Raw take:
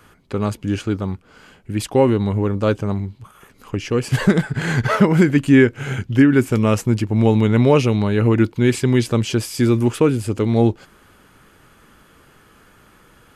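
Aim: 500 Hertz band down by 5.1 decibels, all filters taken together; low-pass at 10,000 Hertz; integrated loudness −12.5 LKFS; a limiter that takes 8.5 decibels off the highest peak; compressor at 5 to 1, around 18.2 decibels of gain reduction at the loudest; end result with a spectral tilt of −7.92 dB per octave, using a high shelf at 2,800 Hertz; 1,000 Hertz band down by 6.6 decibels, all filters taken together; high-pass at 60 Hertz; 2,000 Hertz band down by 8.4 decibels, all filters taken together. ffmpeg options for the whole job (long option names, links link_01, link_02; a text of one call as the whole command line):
ffmpeg -i in.wav -af "highpass=60,lowpass=10000,equalizer=frequency=500:width_type=o:gain=-5.5,equalizer=frequency=1000:width_type=o:gain=-4,equalizer=frequency=2000:width_type=o:gain=-6.5,highshelf=frequency=2800:gain=-7,acompressor=threshold=-31dB:ratio=5,volume=25dB,alimiter=limit=-2.5dB:level=0:latency=1" out.wav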